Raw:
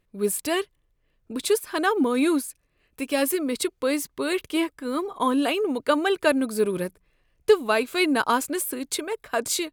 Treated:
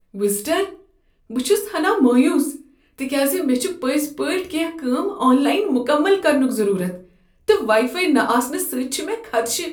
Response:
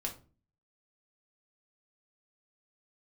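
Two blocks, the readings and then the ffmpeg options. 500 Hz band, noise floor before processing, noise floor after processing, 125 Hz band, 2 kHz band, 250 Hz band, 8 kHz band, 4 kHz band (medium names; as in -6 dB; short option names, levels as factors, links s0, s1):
+5.0 dB, -70 dBFS, -59 dBFS, +7.5 dB, +3.5 dB, +7.0 dB, +3.5 dB, +3.0 dB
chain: -filter_complex "[0:a]adynamicequalizer=threshold=0.00794:dfrequency=2800:dqfactor=1.1:tfrequency=2800:tqfactor=1.1:attack=5:release=100:ratio=0.375:range=2:mode=cutabove:tftype=bell[s0];[1:a]atrim=start_sample=2205[s1];[s0][s1]afir=irnorm=-1:irlink=0,volume=1.58"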